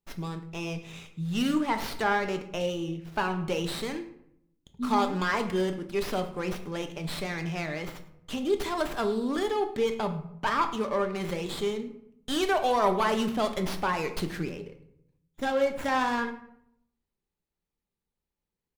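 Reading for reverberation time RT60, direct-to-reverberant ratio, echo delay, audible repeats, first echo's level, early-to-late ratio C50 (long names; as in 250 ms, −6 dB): 0.75 s, 7.0 dB, 106 ms, 1, −19.5 dB, 11.5 dB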